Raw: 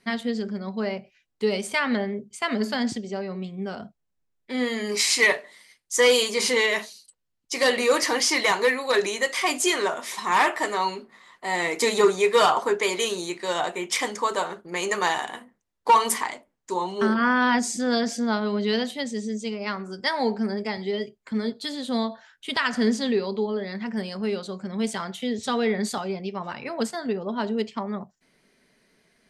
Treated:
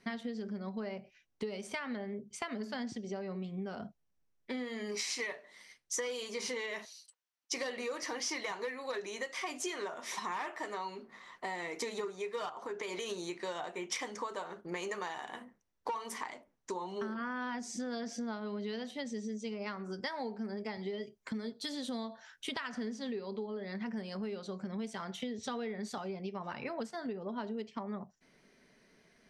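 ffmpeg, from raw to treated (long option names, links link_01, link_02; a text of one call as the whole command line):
ffmpeg -i in.wav -filter_complex "[0:a]asettb=1/sr,asplit=3[link_01][link_02][link_03];[link_01]atrim=end=6.854[link_04];[link_02]atrim=start=6.85:end=7.53,asetpts=PTS-STARTPTS,afade=type=in:duration=0.004:curve=qsin,afade=type=out:start_time=0.676:duration=0.004:curve=qsin,highpass=840[link_05];[link_03]atrim=start=7.526[link_06];[link_04][link_05]acrossfade=duration=0.004:curve1=hsin:curve2=qsin[link_07];[link_07][link_06]acrossfade=duration=0.004:curve1=qsin:curve2=hsin,asettb=1/sr,asplit=3[link_08][link_09][link_10];[link_08]atrim=end=12.494[link_11];[link_09]atrim=start=12.49:end=13.09,asetpts=PTS-STARTPTS,afade=type=in:duration=0.004:curve=qsin,afade=type=out:start_time=0.596:duration=0.004:curve=qsin,acompressor=threshold=-27dB:ratio=3:attack=3.2:release=140:knee=1:detection=peak[link_12];[link_10]atrim=start=13.086[link_13];[link_11][link_12]acrossfade=duration=0.004:curve1=hsin:curve2=qsin[link_14];[link_14][link_13]acrossfade=duration=0.004:curve1=qsin:curve2=hsin,asettb=1/sr,asplit=3[link_15][link_16][link_17];[link_15]atrim=end=21.034[link_18];[link_16]atrim=start=21.03:end=22.49,asetpts=PTS-STARTPTS,afade=type=in:duration=0.004:curve=qsin,afade=type=out:start_time=1.456:duration=0.004:curve=qsin,highshelf=frequency=6300:gain=11[link_19];[link_17]atrim=start=22.486[link_20];[link_18][link_19]acrossfade=duration=0.004:curve1=hsin:curve2=qsin[link_21];[link_21][link_20]acrossfade=duration=0.004:curve1=qsin:curve2=hsin,aemphasis=mode=reproduction:type=cd,acompressor=threshold=-35dB:ratio=10,equalizer=frequency=5800:width=6.7:gain=8.5,volume=-1dB" out.wav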